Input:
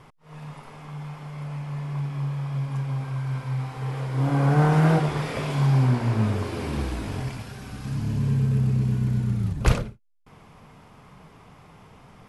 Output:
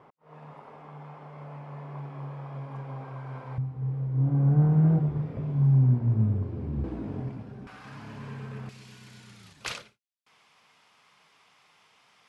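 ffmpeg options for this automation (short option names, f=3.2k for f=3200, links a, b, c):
-af "asetnsamples=n=441:p=0,asendcmd='3.58 bandpass f 110;6.84 bandpass f 260;7.67 bandpass f 1300;8.69 bandpass f 4200',bandpass=f=600:t=q:w=0.82:csg=0"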